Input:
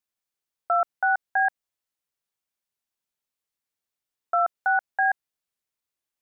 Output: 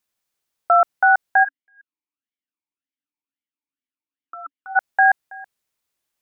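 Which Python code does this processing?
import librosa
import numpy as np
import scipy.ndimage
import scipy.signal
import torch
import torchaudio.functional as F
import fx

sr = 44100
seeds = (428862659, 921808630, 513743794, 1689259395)

y = x + 10.0 ** (-23.0 / 20.0) * np.pad(x, (int(326 * sr / 1000.0), 0))[:len(x)]
y = fx.vowel_sweep(y, sr, vowels='i-u', hz=fx.line((1.43, 1.2), (4.75, 3.3)), at=(1.43, 4.75), fade=0.02)
y = y * 10.0 ** (8.0 / 20.0)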